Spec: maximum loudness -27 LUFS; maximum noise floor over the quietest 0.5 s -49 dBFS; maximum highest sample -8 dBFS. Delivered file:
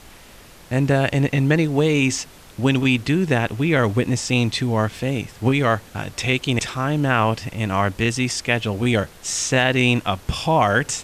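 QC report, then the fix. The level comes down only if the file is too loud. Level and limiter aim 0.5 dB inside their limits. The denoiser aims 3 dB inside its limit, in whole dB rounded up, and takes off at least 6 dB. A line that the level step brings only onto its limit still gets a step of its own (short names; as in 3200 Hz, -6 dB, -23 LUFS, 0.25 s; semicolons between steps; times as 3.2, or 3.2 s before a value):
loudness -20.5 LUFS: fail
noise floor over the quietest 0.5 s -45 dBFS: fail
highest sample -4.5 dBFS: fail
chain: gain -7 dB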